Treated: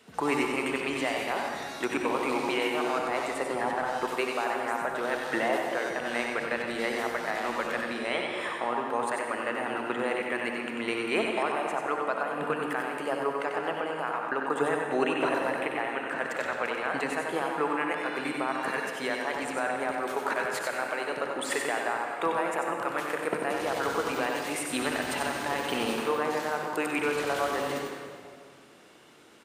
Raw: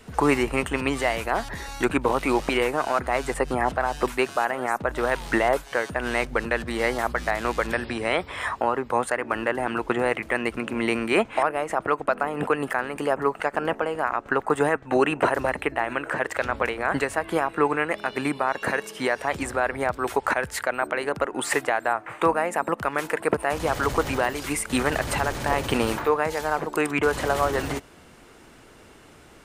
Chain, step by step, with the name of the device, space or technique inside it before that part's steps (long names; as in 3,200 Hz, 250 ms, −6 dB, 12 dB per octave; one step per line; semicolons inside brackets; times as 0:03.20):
PA in a hall (high-pass filter 190 Hz 12 dB per octave; parametric band 3,500 Hz +4 dB 1 octave; single-tap delay 93 ms −5 dB; convolution reverb RT60 2.1 s, pre-delay 56 ms, DRR 3 dB)
level −8 dB